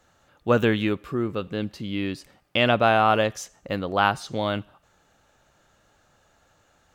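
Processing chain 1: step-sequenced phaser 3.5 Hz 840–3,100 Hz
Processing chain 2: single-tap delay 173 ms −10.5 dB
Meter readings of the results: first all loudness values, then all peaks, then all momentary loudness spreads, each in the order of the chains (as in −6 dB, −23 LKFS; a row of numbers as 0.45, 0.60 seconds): −27.5, −24.0 LKFS; −8.5, −6.5 dBFS; 13, 13 LU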